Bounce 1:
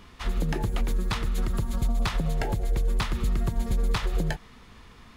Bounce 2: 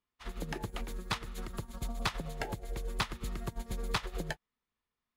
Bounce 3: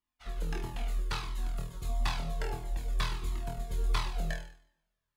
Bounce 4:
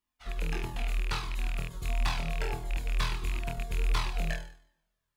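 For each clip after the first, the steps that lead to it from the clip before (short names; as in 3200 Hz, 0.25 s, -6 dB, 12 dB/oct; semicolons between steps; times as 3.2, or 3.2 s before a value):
low shelf 220 Hz -9 dB; upward expander 2.5:1, over -52 dBFS
on a send: flutter echo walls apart 4.2 m, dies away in 0.52 s; on the sum: two-slope reverb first 0.52 s, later 1.6 s, from -24 dB, DRR 10.5 dB; cascading flanger falling 1.5 Hz
rattling part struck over -32 dBFS, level -28 dBFS; overloaded stage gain 23 dB; gain +2 dB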